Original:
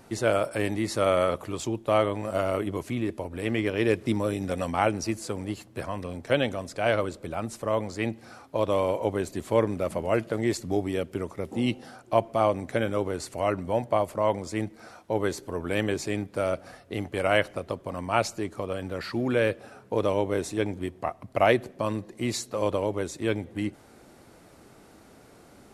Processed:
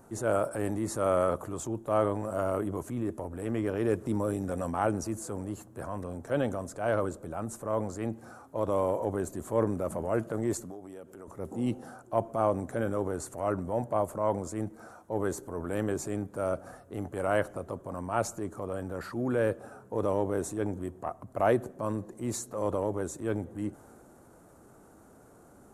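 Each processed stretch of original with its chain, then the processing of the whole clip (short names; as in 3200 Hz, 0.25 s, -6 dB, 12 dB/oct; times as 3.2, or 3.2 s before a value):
10.63–11.28 HPF 300 Hz 6 dB/oct + compressor, threshold -38 dBFS
whole clip: band shelf 3200 Hz -13.5 dB; transient shaper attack -5 dB, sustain +3 dB; gain -2.5 dB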